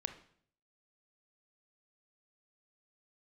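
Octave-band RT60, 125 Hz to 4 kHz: 0.80 s, 0.65 s, 0.60 s, 0.55 s, 0.55 s, 0.55 s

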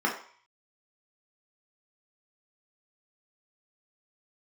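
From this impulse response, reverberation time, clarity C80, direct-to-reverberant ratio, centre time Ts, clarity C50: 0.50 s, 11.5 dB, -2.5 dB, 24 ms, 7.5 dB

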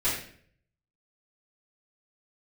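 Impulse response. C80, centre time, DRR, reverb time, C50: 6.5 dB, 44 ms, -12.0 dB, 0.55 s, 3.0 dB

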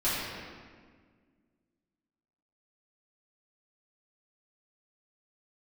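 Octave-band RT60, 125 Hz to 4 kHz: 2.1 s, 2.4 s, 1.8 s, 1.6 s, 1.5 s, 1.2 s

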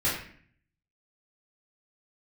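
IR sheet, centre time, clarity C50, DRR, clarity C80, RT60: 45 ms, 3.5 dB, -7.5 dB, 7.0 dB, 0.55 s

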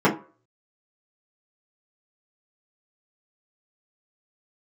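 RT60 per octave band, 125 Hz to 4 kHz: 0.35 s, 0.30 s, 0.40 s, 0.40 s, 0.35 s, 0.20 s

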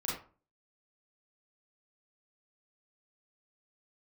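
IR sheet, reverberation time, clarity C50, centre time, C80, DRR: 0.40 s, 2.0 dB, 47 ms, 8.5 dB, -6.5 dB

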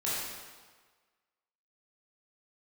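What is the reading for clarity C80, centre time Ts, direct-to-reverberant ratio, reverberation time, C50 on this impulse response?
0.0 dB, 106 ms, -9.0 dB, 1.5 s, -2.5 dB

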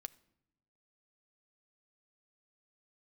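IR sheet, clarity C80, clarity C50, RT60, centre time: 23.5 dB, 21.5 dB, no single decay rate, 2 ms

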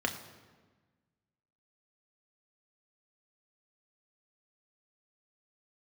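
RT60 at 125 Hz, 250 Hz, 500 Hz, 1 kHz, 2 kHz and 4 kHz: 1.8 s, 1.7 s, 1.4 s, 1.3 s, 1.2 s, 1.0 s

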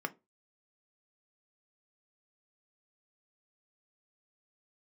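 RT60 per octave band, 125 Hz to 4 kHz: 0.25 s, 0.25 s, 0.25 s, 0.20 s, 0.15 s, 0.15 s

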